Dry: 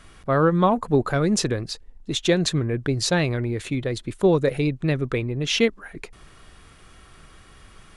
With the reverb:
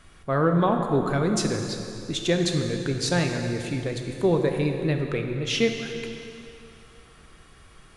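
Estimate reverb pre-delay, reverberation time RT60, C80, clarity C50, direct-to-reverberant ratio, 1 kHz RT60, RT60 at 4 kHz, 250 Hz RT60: 5 ms, 2.8 s, 5.5 dB, 4.5 dB, 3.5 dB, 2.8 s, 2.6 s, 2.8 s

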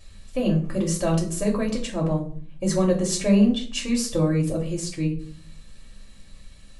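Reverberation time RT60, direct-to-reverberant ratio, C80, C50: 0.45 s, −2.0 dB, 14.5 dB, 9.5 dB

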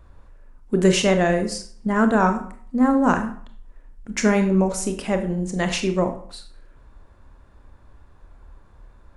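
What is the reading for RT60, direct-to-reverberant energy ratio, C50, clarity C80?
0.50 s, 6.5 dB, 10.0 dB, 14.0 dB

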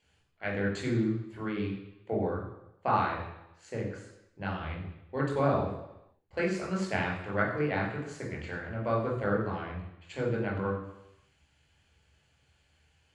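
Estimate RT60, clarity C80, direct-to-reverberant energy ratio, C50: 0.85 s, 7.5 dB, −3.0 dB, 4.5 dB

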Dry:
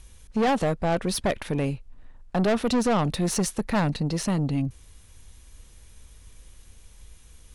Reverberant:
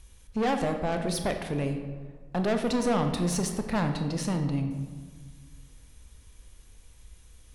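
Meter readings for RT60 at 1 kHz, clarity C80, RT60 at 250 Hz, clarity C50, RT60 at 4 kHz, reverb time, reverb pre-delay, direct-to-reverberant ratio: 1.5 s, 8.5 dB, 2.0 s, 7.0 dB, 0.85 s, 1.5 s, 23 ms, 5.5 dB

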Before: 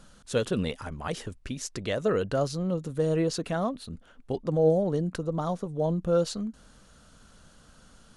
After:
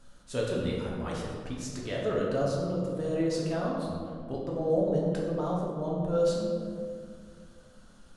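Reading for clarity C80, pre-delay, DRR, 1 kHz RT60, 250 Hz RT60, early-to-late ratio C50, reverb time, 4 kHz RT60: 2.5 dB, 3 ms, −4.0 dB, 1.9 s, 2.6 s, 0.5 dB, 2.1 s, 1.1 s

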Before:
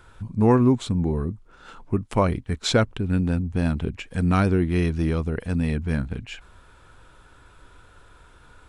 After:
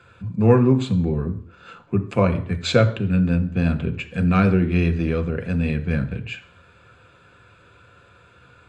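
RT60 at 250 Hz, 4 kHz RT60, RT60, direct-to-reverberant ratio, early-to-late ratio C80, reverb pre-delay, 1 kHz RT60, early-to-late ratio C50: 0.55 s, 0.55 s, 0.50 s, 6.5 dB, 17.0 dB, 3 ms, 0.55 s, 14.0 dB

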